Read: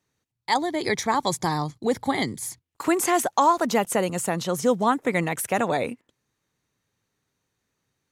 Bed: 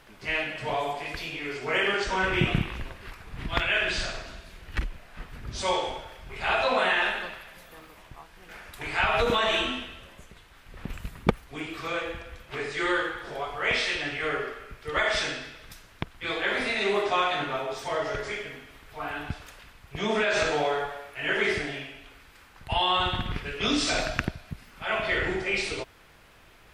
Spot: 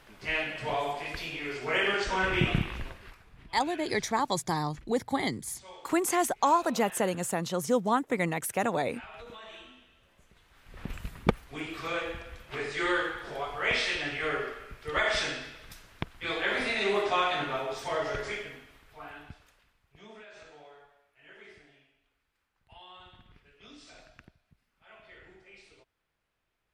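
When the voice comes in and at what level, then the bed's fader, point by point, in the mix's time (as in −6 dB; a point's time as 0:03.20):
3.05 s, −5.0 dB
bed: 0:02.89 −2 dB
0:03.60 −22.5 dB
0:09.76 −22.5 dB
0:10.79 −2 dB
0:18.33 −2 dB
0:20.36 −26.5 dB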